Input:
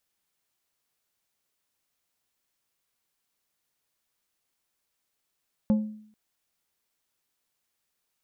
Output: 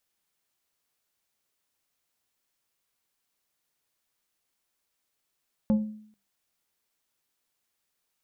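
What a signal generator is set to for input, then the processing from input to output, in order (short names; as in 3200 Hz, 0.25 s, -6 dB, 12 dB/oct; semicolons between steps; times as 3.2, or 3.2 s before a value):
glass hit plate, length 0.44 s, lowest mode 214 Hz, decay 0.61 s, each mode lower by 11.5 dB, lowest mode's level -16.5 dB
notches 50/100/150/200 Hz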